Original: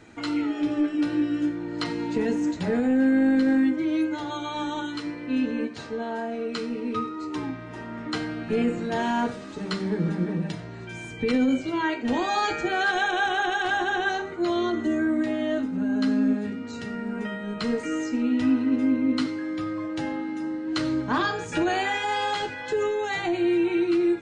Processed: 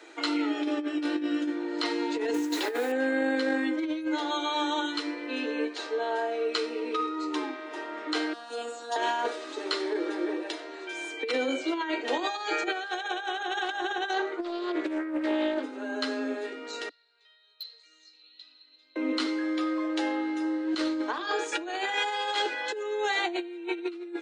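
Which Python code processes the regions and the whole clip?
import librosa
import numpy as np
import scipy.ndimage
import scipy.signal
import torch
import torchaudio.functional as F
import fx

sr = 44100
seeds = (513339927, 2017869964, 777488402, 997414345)

y = fx.chain(x, sr, fx.peak_eq(hz=630.0, db=-10.0, octaves=0.28),
    fx.quant_dither(seeds[0], bits=8, dither='none'),
    fx.env_flatten(amount_pct=50), at=(2.34, 2.92))
y = fx.chain(y, sr, fx.high_shelf(hz=3900.0, db=8.5),
    fx.fixed_phaser(hz=920.0, stages=4),
    fx.robotise(hz=236.0), at=(8.33, 8.96))
y = fx.chain(y, sr, fx.high_shelf(hz=6100.0, db=-9.5),
    fx.doppler_dist(depth_ms=0.26), at=(14.13, 15.64))
y = fx.chain(y, sr, fx.bandpass_q(hz=4100.0, q=17.0),
    fx.clip_hard(threshold_db=-39.0), at=(16.89, 18.96))
y = scipy.signal.sosfilt(scipy.signal.butter(12, 300.0, 'highpass', fs=sr, output='sos'), y)
y = fx.peak_eq(y, sr, hz=3700.0, db=4.5, octaves=0.61)
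y = fx.over_compress(y, sr, threshold_db=-28.0, ratio=-0.5)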